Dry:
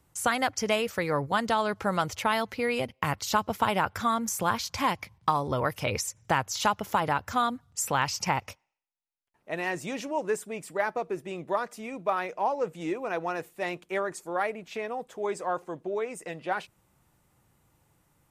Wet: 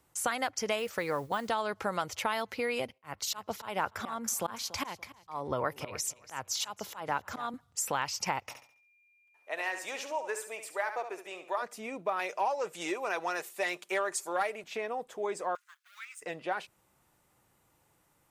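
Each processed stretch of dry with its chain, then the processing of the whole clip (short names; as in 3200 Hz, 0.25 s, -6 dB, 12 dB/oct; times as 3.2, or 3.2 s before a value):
0.79–1.5 de-esser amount 90% + modulation noise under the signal 29 dB
2.98–7.54 auto swell 0.213 s + feedback echo 0.287 s, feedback 27%, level -16 dB + three-band expander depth 40%
8.49–11.61 HPF 610 Hz + flutter echo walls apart 11.9 m, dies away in 0.43 s + whine 2400 Hz -65 dBFS
12.19–14.64 tone controls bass -5 dB, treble +8 dB + comb 5.1 ms, depth 38% + overdrive pedal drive 9 dB, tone 7500 Hz, clips at -13 dBFS
15.55–16.22 G.711 law mismatch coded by A + elliptic high-pass 1400 Hz, stop band 70 dB
whole clip: tone controls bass -8 dB, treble 0 dB; compressor 2:1, threshold -31 dBFS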